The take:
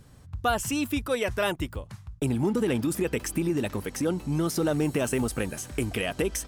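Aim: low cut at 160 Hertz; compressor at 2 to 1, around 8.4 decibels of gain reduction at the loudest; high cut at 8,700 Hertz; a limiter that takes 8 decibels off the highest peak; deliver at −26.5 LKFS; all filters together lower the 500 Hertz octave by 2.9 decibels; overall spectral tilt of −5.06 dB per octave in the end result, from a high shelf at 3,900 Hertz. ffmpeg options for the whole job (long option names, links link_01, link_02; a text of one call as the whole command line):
ffmpeg -i in.wav -af "highpass=160,lowpass=8700,equalizer=frequency=500:width_type=o:gain=-3.5,highshelf=frequency=3900:gain=-7,acompressor=threshold=-40dB:ratio=2,volume=14dB,alimiter=limit=-16dB:level=0:latency=1" out.wav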